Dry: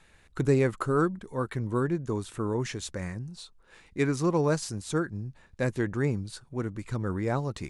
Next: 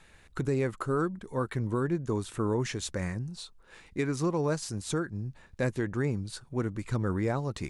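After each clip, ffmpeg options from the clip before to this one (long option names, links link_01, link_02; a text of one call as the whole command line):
ffmpeg -i in.wav -af "alimiter=limit=-21dB:level=0:latency=1:release=374,volume=2dB" out.wav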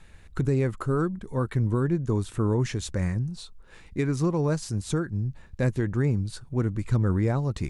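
ffmpeg -i in.wav -af "lowshelf=frequency=190:gain=11" out.wav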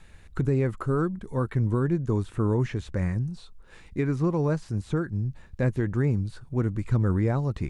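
ffmpeg -i in.wav -filter_complex "[0:a]acrossover=split=2900[link_01][link_02];[link_02]acompressor=threshold=-54dB:ratio=4:attack=1:release=60[link_03];[link_01][link_03]amix=inputs=2:normalize=0" out.wav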